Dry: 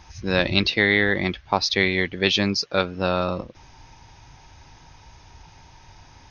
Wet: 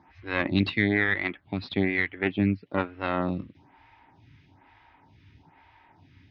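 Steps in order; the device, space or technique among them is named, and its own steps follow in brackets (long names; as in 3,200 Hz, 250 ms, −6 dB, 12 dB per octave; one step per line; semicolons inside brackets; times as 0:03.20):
0:01.40–0:02.65: low-pass filter 4,900 Hz → 2,400 Hz 24 dB per octave
vibe pedal into a guitar amplifier (phaser with staggered stages 1.1 Hz; tube saturation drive 14 dB, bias 0.75; loudspeaker in its box 84–3,400 Hz, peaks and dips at 97 Hz +6 dB, 180 Hz +4 dB, 280 Hz +9 dB, 510 Hz −6 dB, 2,000 Hz +5 dB)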